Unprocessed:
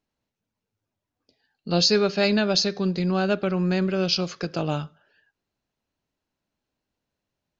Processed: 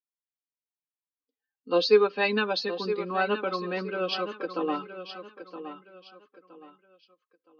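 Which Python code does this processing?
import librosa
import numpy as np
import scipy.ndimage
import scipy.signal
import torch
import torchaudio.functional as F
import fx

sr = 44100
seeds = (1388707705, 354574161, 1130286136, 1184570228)

y = fx.bin_expand(x, sr, power=1.5)
y = fx.cabinet(y, sr, low_hz=290.0, low_slope=24, high_hz=3500.0, hz=(420.0, 640.0, 1100.0, 2200.0), db=(9, -9, 8, -3))
y = y + 0.79 * np.pad(y, (int(3.9 * sr / 1000.0), 0))[:len(y)]
y = fx.echo_feedback(y, sr, ms=968, feedback_pct=31, wet_db=-11)
y = fx.end_taper(y, sr, db_per_s=510.0)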